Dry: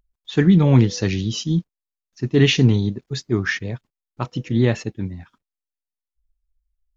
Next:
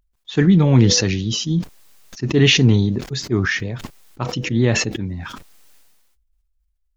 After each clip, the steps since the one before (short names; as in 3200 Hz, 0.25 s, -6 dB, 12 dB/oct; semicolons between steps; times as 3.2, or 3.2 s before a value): sustainer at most 34 dB/s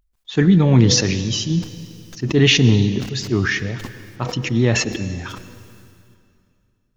reverb RT60 2.5 s, pre-delay 91 ms, DRR 13.5 dB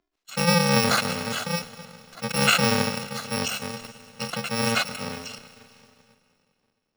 FFT order left unsorted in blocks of 128 samples; three-band isolator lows -21 dB, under 180 Hz, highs -20 dB, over 6300 Hz